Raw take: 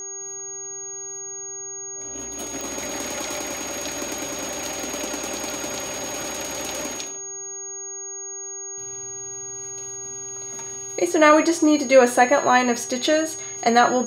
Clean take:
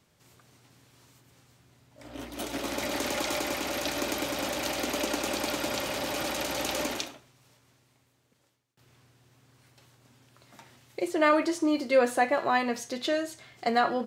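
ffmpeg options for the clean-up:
-af "adeclick=t=4,bandreject=f=390.5:t=h:w=4,bandreject=f=781:t=h:w=4,bandreject=f=1.1715k:t=h:w=4,bandreject=f=1.562k:t=h:w=4,bandreject=f=1.9525k:t=h:w=4,bandreject=f=6.6k:w=30,asetnsamples=n=441:p=0,asendcmd='8.43 volume volume -8.5dB',volume=0dB"

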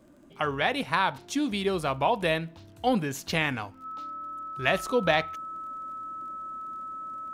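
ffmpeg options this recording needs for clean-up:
-af "adeclick=t=4,bandreject=f=1.3k:w=30"

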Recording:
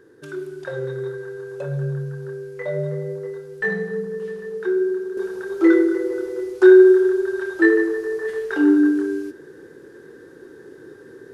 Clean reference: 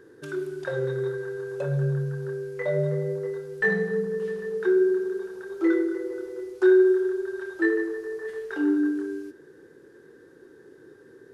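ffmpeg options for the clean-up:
-af "asetnsamples=n=441:p=0,asendcmd='5.17 volume volume -8dB',volume=0dB"

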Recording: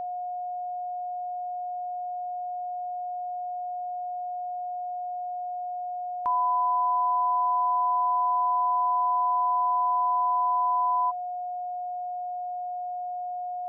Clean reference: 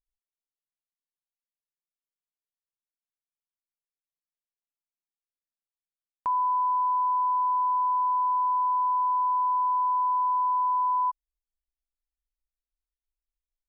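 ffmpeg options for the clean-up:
-af "bandreject=f=720:w=30,agate=range=-21dB:threshold=-25dB"

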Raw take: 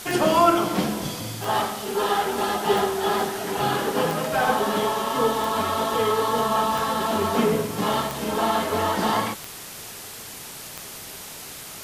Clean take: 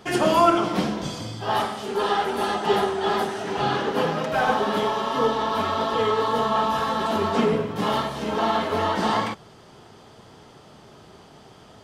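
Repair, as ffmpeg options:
-af "adeclick=t=4,afwtdn=0.014"

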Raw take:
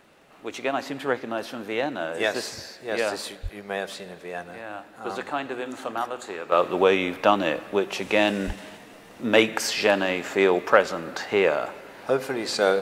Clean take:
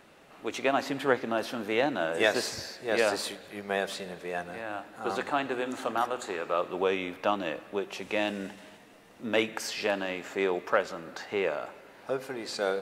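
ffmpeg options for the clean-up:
-filter_complex "[0:a]adeclick=t=4,asplit=3[a][b][c];[a]afade=t=out:st=3.42:d=0.02[d];[b]highpass=f=140:w=0.5412,highpass=f=140:w=1.3066,afade=t=in:st=3.42:d=0.02,afade=t=out:st=3.54:d=0.02[e];[c]afade=t=in:st=3.54:d=0.02[f];[d][e][f]amix=inputs=3:normalize=0,asplit=3[g][h][i];[g]afade=t=out:st=8.46:d=0.02[j];[h]highpass=f=140:w=0.5412,highpass=f=140:w=1.3066,afade=t=in:st=8.46:d=0.02,afade=t=out:st=8.58:d=0.02[k];[i]afade=t=in:st=8.58:d=0.02[l];[j][k][l]amix=inputs=3:normalize=0,asetnsamples=n=441:p=0,asendcmd='6.52 volume volume -8.5dB',volume=0dB"

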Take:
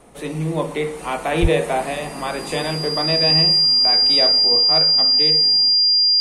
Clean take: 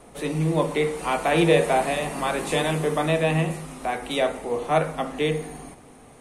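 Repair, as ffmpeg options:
-filter_complex "[0:a]bandreject=f=4.8k:w=30,asplit=3[a][b][c];[a]afade=t=out:st=1.41:d=0.02[d];[b]highpass=f=140:w=0.5412,highpass=f=140:w=1.3066,afade=t=in:st=1.41:d=0.02,afade=t=out:st=1.53:d=0.02[e];[c]afade=t=in:st=1.53:d=0.02[f];[d][e][f]amix=inputs=3:normalize=0,asetnsamples=n=441:p=0,asendcmd='4.61 volume volume 3.5dB',volume=0dB"

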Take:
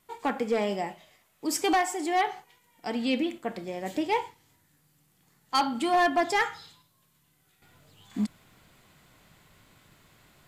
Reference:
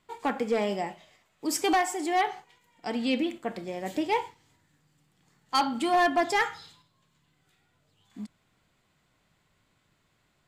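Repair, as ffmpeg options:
-af "agate=range=-21dB:threshold=-59dB,asetnsamples=n=441:p=0,asendcmd='7.62 volume volume -11dB',volume=0dB"

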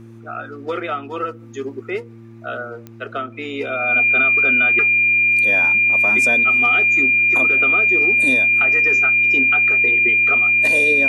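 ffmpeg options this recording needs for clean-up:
-af "adeclick=t=4,bandreject=f=114:t=h:w=4,bandreject=f=228:t=h:w=4,bandreject=f=342:t=h:w=4,bandreject=f=2.4k:w=30"

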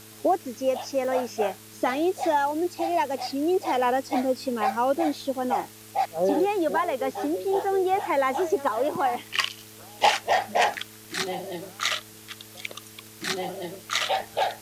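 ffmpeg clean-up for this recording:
-af "adeclick=t=4,bandreject=f=108.6:t=h:w=4,bandreject=f=217.2:t=h:w=4,bandreject=f=325.8:t=h:w=4,bandreject=f=434.4:t=h:w=4,afwtdn=0.0045"

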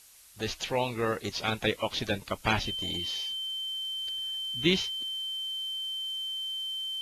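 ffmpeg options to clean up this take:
-af "adeclick=t=4,bandreject=f=3.1k:w=30,afftdn=nr=29:nf=-47"

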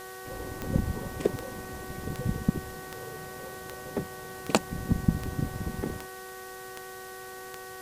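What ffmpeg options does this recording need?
-af "adeclick=t=4,bandreject=f=375.8:t=h:w=4,bandreject=f=751.6:t=h:w=4,bandreject=f=1.1274k:t=h:w=4,bandreject=f=1.5032k:t=h:w=4,bandreject=f=1.879k:t=h:w=4,bandreject=f=490:w=30,afwtdn=0.004"

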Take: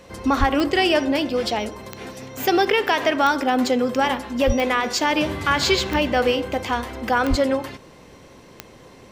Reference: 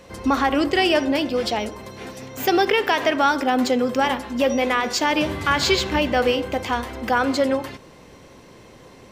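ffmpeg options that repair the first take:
-filter_complex "[0:a]adeclick=t=4,asplit=3[a][b][c];[a]afade=t=out:st=0.39:d=0.02[d];[b]highpass=f=140:w=0.5412,highpass=f=140:w=1.3066,afade=t=in:st=0.39:d=0.02,afade=t=out:st=0.51:d=0.02[e];[c]afade=t=in:st=0.51:d=0.02[f];[d][e][f]amix=inputs=3:normalize=0,asplit=3[g][h][i];[g]afade=t=out:st=4.46:d=0.02[j];[h]highpass=f=140:w=0.5412,highpass=f=140:w=1.3066,afade=t=in:st=4.46:d=0.02,afade=t=out:st=4.58:d=0.02[k];[i]afade=t=in:st=4.58:d=0.02[l];[j][k][l]amix=inputs=3:normalize=0,asplit=3[m][n][o];[m]afade=t=out:st=7.29:d=0.02[p];[n]highpass=f=140:w=0.5412,highpass=f=140:w=1.3066,afade=t=in:st=7.29:d=0.02,afade=t=out:st=7.41:d=0.02[q];[o]afade=t=in:st=7.41:d=0.02[r];[p][q][r]amix=inputs=3:normalize=0"

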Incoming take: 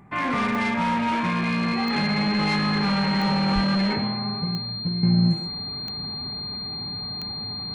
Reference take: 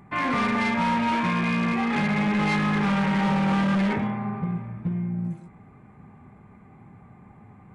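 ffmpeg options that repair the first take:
-filter_complex "[0:a]adeclick=t=4,bandreject=f=4.2k:w=30,asplit=3[a][b][c];[a]afade=t=out:st=3.54:d=0.02[d];[b]highpass=f=140:w=0.5412,highpass=f=140:w=1.3066,afade=t=in:st=3.54:d=0.02,afade=t=out:st=3.66:d=0.02[e];[c]afade=t=in:st=3.66:d=0.02[f];[d][e][f]amix=inputs=3:normalize=0,asetnsamples=n=441:p=0,asendcmd='5.03 volume volume -10dB',volume=0dB"

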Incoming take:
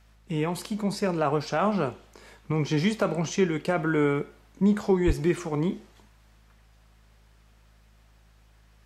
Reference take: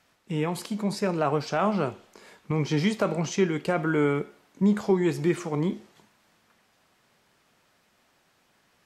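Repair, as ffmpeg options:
-filter_complex "[0:a]bandreject=f=53.2:t=h:w=4,bandreject=f=106.4:t=h:w=4,bandreject=f=159.6:t=h:w=4,bandreject=f=212.8:t=h:w=4,asplit=3[a][b][c];[a]afade=t=out:st=5.06:d=0.02[d];[b]highpass=f=140:w=0.5412,highpass=f=140:w=1.3066,afade=t=in:st=5.06:d=0.02,afade=t=out:st=5.18:d=0.02[e];[c]afade=t=in:st=5.18:d=0.02[f];[d][e][f]amix=inputs=3:normalize=0"

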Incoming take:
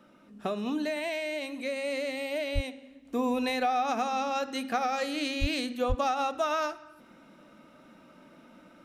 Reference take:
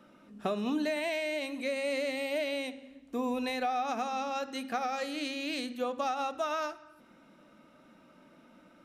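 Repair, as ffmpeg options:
-filter_complex "[0:a]asplit=3[a][b][c];[a]afade=t=out:st=2.54:d=0.02[d];[b]highpass=f=140:w=0.5412,highpass=f=140:w=1.3066,afade=t=in:st=2.54:d=0.02,afade=t=out:st=2.66:d=0.02[e];[c]afade=t=in:st=2.66:d=0.02[f];[d][e][f]amix=inputs=3:normalize=0,asplit=3[g][h][i];[g]afade=t=out:st=5.4:d=0.02[j];[h]highpass=f=140:w=0.5412,highpass=f=140:w=1.3066,afade=t=in:st=5.4:d=0.02,afade=t=out:st=5.52:d=0.02[k];[i]afade=t=in:st=5.52:d=0.02[l];[j][k][l]amix=inputs=3:normalize=0,asplit=3[m][n][o];[m]afade=t=out:st=5.88:d=0.02[p];[n]highpass=f=140:w=0.5412,highpass=f=140:w=1.3066,afade=t=in:st=5.88:d=0.02,afade=t=out:st=6:d=0.02[q];[o]afade=t=in:st=6:d=0.02[r];[p][q][r]amix=inputs=3:normalize=0,asetnsamples=n=441:p=0,asendcmd='3.05 volume volume -4dB',volume=0dB"

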